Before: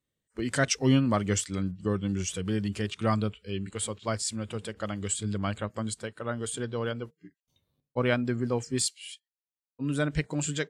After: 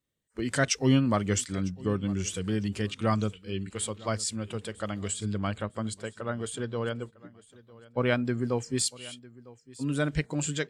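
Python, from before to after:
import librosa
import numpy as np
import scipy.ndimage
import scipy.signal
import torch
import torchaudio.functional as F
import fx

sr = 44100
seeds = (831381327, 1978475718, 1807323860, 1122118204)

y = fx.high_shelf(x, sr, hz=6100.0, db=-5.5, at=(5.11, 8.08))
y = fx.echo_feedback(y, sr, ms=953, feedback_pct=27, wet_db=-21.0)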